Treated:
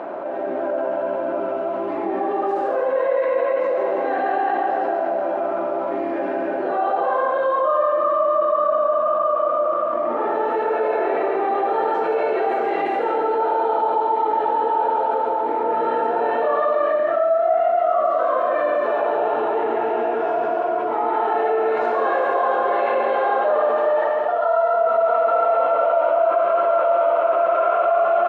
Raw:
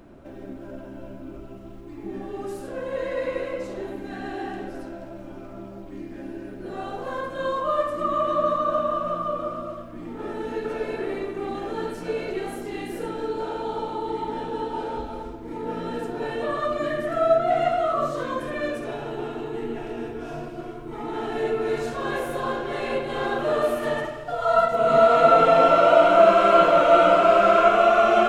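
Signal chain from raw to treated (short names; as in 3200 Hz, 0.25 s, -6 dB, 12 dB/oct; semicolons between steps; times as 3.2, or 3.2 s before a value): reverse bouncing-ball echo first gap 0.14 s, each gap 1.15×, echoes 5; AGC; ladder band-pass 840 Hz, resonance 35%; fast leveller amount 70%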